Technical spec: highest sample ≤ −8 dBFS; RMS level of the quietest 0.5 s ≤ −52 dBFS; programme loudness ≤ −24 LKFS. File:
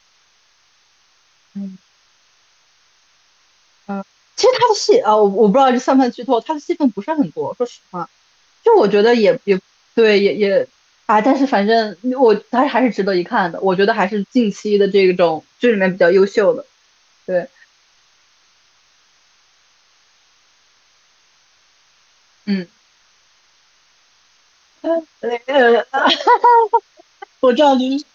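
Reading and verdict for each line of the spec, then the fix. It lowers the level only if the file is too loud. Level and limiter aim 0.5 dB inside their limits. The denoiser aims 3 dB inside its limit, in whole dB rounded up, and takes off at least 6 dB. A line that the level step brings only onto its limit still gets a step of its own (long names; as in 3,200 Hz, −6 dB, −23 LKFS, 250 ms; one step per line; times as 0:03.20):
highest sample −3.0 dBFS: out of spec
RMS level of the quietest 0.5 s −57 dBFS: in spec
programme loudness −15.0 LKFS: out of spec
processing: level −9.5 dB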